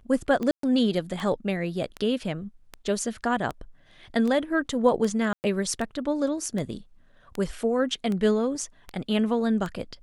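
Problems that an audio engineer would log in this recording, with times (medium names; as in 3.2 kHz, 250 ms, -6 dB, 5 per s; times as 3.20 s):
tick 78 rpm -19 dBFS
0.51–0.63 s: dropout 123 ms
5.33–5.44 s: dropout 109 ms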